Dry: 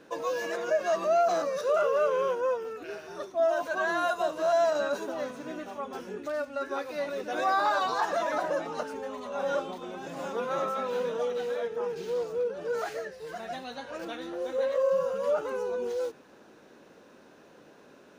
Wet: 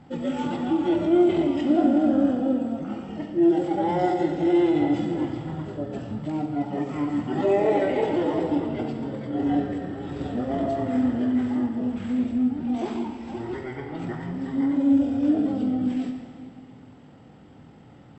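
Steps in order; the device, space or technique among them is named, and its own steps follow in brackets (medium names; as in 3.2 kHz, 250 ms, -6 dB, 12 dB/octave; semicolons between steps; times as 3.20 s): monster voice (pitch shift -11.5 st; bass shelf 130 Hz +5 dB; reverberation RT60 2.2 s, pre-delay 15 ms, DRR 4 dB); trim +3.5 dB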